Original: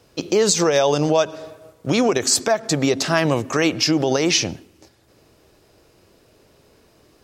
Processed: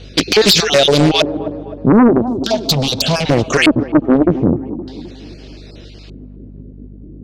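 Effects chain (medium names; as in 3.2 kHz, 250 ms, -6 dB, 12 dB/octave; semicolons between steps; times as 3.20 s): random holes in the spectrogram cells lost 24%; in parallel at +1 dB: compression, threshold -27 dBFS, peak gain reduction 13 dB; on the sum: peaking EQ 980 Hz -13 dB 1.1 oct; hum 50 Hz, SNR 24 dB; LFO low-pass square 0.41 Hz 260–4000 Hz; Chebyshev shaper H 5 -7 dB, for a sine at -2 dBFS; 2.33–3.26 s: static phaser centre 800 Hz, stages 4; on a send: feedback echo behind a band-pass 259 ms, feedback 51%, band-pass 490 Hz, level -10 dB; on the sum: loudspeaker Doppler distortion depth 0.71 ms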